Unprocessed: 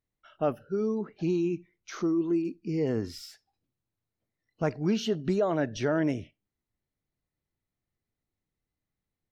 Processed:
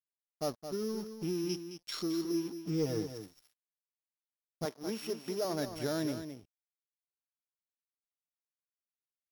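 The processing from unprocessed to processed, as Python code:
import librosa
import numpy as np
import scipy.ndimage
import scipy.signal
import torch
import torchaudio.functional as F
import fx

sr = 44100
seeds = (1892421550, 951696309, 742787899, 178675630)

p1 = np.r_[np.sort(x[:len(x) // 8 * 8].reshape(-1, 8), axis=1).ravel(), x[len(x) // 8 * 8:]]
p2 = fx.peak_eq(p1, sr, hz=4400.0, db=15.0, octaves=1.6, at=(1.49, 2.03))
p3 = fx.comb(p2, sr, ms=6.4, depth=0.74, at=(2.67, 3.18))
p4 = np.sign(p3) * np.maximum(np.abs(p3) - 10.0 ** (-44.5 / 20.0), 0.0)
p5 = fx.highpass(p4, sr, hz=290.0, slope=12, at=(4.65, 5.45))
p6 = 10.0 ** (-16.0 / 20.0) * np.tanh(p5 / 10.0 ** (-16.0 / 20.0))
p7 = p6 + fx.echo_single(p6, sr, ms=217, db=-9.5, dry=0)
y = p7 * librosa.db_to_amplitude(-6.0)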